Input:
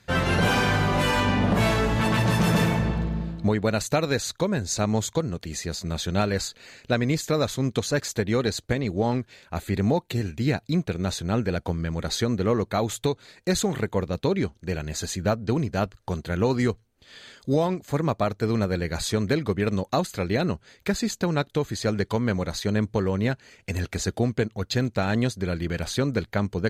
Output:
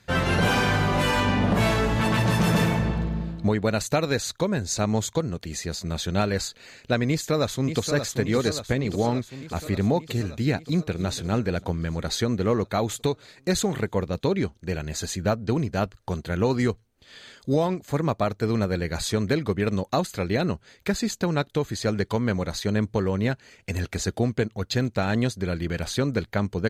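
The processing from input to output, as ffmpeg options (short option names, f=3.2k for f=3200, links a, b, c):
-filter_complex "[0:a]asplit=2[a][b];[b]afade=t=in:st=7.09:d=0.01,afade=t=out:st=7.93:d=0.01,aecho=0:1:580|1160|1740|2320|2900|3480|4060|4640|5220|5800|6380:0.398107|0.278675|0.195073|0.136551|0.0955855|0.0669099|0.0468369|0.0327858|0.0229501|0.0160651|0.0112455[c];[a][c]amix=inputs=2:normalize=0,asplit=2[d][e];[e]afade=t=in:st=10.65:d=0.01,afade=t=out:st=11.06:d=0.01,aecho=0:1:290|580|870:0.199526|0.0598579|0.0179574[f];[d][f]amix=inputs=2:normalize=0"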